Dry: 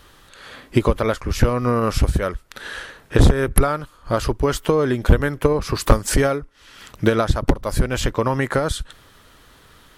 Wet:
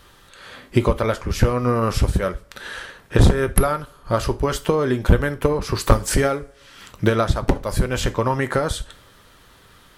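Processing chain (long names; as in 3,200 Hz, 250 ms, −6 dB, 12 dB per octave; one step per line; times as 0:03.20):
coupled-rooms reverb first 0.29 s, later 1.7 s, from −26 dB, DRR 9 dB
level −1 dB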